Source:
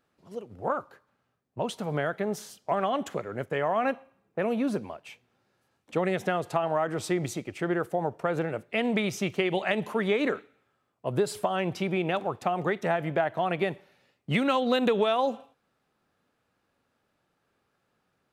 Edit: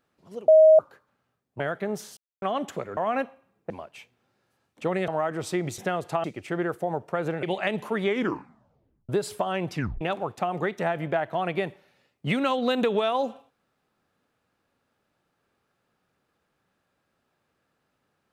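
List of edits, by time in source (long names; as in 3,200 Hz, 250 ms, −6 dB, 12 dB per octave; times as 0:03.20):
0:00.48–0:00.79: beep over 630 Hz −10.5 dBFS
0:01.60–0:01.98: remove
0:02.55–0:02.80: silence
0:03.35–0:03.66: remove
0:04.39–0:04.81: remove
0:06.19–0:06.65: move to 0:07.35
0:08.54–0:09.47: remove
0:10.09: tape stop 1.04 s
0:11.77: tape stop 0.28 s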